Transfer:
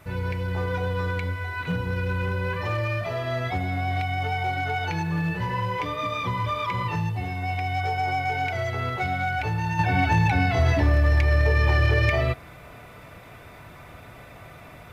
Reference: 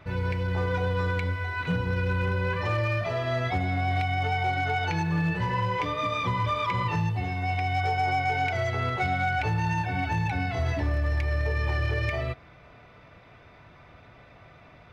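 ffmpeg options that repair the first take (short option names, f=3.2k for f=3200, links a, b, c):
-af "agate=range=-21dB:threshold=-37dB,asetnsamples=n=441:p=0,asendcmd='9.79 volume volume -7dB',volume=0dB"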